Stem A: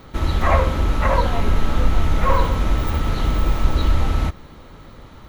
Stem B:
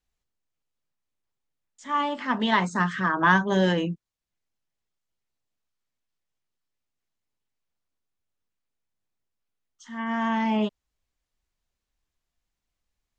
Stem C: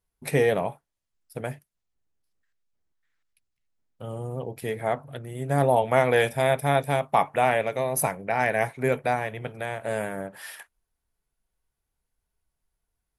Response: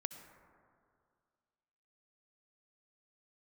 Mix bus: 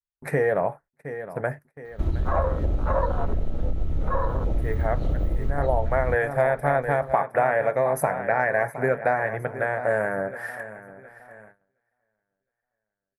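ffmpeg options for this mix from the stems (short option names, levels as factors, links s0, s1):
-filter_complex "[0:a]afwtdn=0.0891,adelay=1850,volume=1.19[s0];[2:a]highshelf=f=2300:t=q:w=3:g=-10.5,volume=1.33,asplit=2[s1][s2];[s2]volume=0.15[s3];[s0][s1]amix=inputs=2:normalize=0,equalizer=f=230:t=o:w=0.31:g=-4,acompressor=threshold=0.1:ratio=6,volume=1[s4];[s3]aecho=0:1:714|1428|2142|2856|3570|4284:1|0.44|0.194|0.0852|0.0375|0.0165[s5];[s4][s5]amix=inputs=2:normalize=0,adynamicequalizer=threshold=0.0141:dfrequency=580:dqfactor=2.6:tfrequency=580:tqfactor=2.6:attack=5:release=100:ratio=0.375:range=2.5:mode=boostabove:tftype=bell,agate=range=0.0708:threshold=0.00447:ratio=16:detection=peak"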